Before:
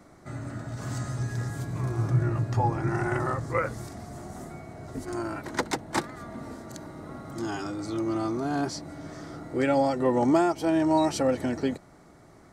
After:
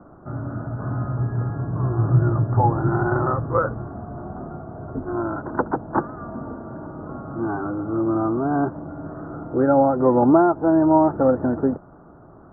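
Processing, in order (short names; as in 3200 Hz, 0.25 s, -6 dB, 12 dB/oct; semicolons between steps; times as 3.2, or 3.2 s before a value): steep low-pass 1500 Hz 72 dB/oct; gain +7 dB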